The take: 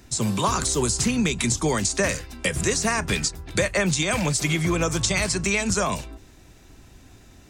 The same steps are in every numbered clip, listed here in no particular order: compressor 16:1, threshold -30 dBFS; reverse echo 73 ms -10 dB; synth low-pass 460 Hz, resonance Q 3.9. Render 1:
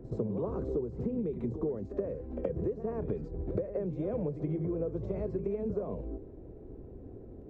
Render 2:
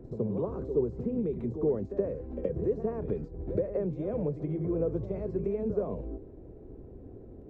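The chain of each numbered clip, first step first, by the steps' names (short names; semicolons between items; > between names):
synth low-pass > compressor > reverse echo; compressor > synth low-pass > reverse echo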